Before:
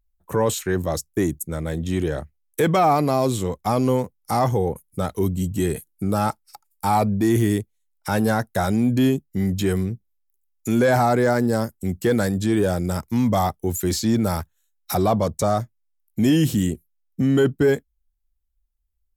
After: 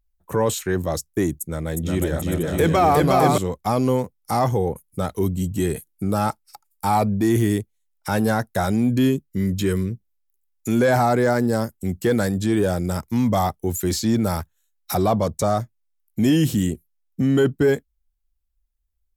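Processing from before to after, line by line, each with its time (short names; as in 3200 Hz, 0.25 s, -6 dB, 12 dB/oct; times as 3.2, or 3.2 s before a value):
1.36–3.38 bouncing-ball echo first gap 0.36 s, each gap 0.7×, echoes 5, each echo -2 dB
8.9–9.92 Butterworth band-stop 750 Hz, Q 2.9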